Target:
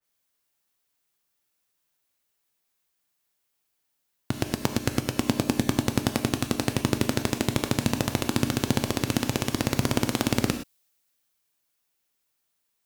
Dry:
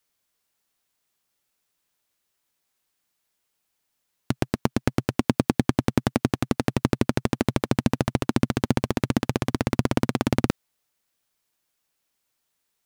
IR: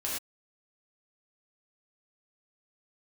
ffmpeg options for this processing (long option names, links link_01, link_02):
-filter_complex "[0:a]asplit=2[link_01][link_02];[link_02]highshelf=frequency=12000:gain=10[link_03];[1:a]atrim=start_sample=2205[link_04];[link_03][link_04]afir=irnorm=-1:irlink=0,volume=-8dB[link_05];[link_01][link_05]amix=inputs=2:normalize=0,adynamicequalizer=threshold=0.00631:dfrequency=2400:dqfactor=0.7:tfrequency=2400:tqfactor=0.7:attack=5:release=100:ratio=0.375:range=4:mode=boostabove:tftype=highshelf,volume=-5.5dB"